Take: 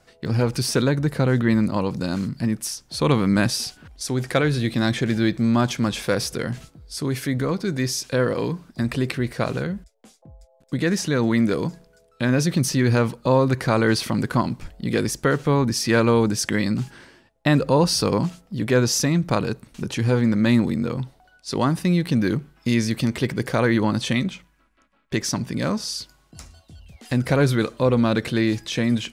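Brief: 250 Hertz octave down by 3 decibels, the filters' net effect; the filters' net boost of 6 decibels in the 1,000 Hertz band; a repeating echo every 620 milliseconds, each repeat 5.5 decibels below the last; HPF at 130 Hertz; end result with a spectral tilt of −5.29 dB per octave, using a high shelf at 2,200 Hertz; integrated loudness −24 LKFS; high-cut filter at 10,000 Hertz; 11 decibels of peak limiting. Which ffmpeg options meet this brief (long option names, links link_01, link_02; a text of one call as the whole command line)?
ffmpeg -i in.wav -af "highpass=130,lowpass=10000,equalizer=frequency=250:width_type=o:gain=-3.5,equalizer=frequency=1000:width_type=o:gain=8.5,highshelf=frequency=2200:gain=-6,alimiter=limit=-13.5dB:level=0:latency=1,aecho=1:1:620|1240|1860|2480|3100|3720|4340:0.531|0.281|0.149|0.079|0.0419|0.0222|0.0118,volume=1.5dB" out.wav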